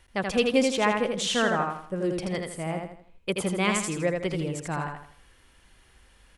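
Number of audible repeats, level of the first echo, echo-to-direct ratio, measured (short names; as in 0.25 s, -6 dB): 4, -4.0 dB, -3.5 dB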